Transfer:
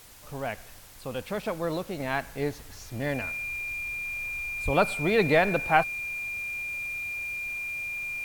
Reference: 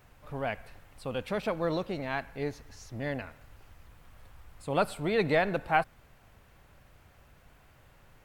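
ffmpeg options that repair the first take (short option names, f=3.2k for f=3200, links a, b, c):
-filter_complex "[0:a]bandreject=f=2.4k:w=30,asplit=3[a][b][c];[a]afade=t=out:st=4.64:d=0.02[d];[b]highpass=f=140:w=0.5412,highpass=f=140:w=1.3066,afade=t=in:st=4.64:d=0.02,afade=t=out:st=4.76:d=0.02[e];[c]afade=t=in:st=4.76:d=0.02[f];[d][e][f]amix=inputs=3:normalize=0,afwtdn=0.0028,asetnsamples=n=441:p=0,asendcmd='2 volume volume -4dB',volume=0dB"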